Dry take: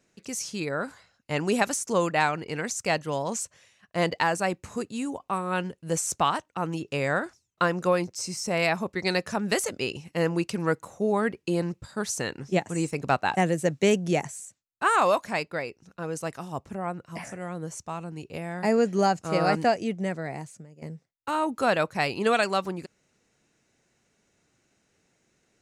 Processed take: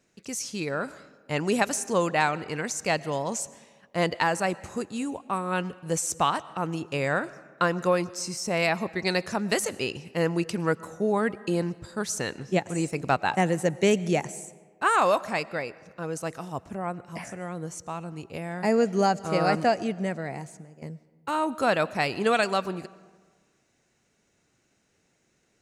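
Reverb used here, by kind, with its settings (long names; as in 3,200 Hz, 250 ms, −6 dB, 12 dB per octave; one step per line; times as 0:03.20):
comb and all-pass reverb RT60 1.5 s, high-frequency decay 0.6×, pre-delay 75 ms, DRR 19 dB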